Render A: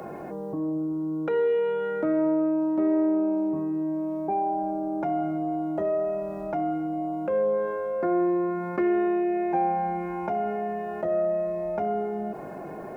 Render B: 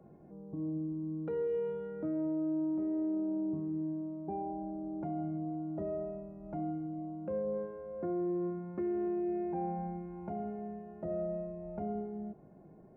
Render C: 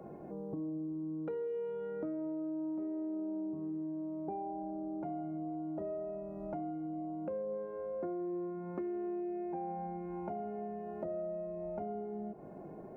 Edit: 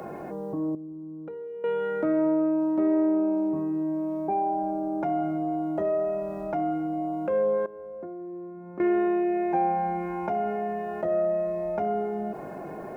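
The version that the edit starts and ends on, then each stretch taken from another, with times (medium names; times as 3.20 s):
A
0.75–1.64 s: from C
7.66–8.80 s: from C
not used: B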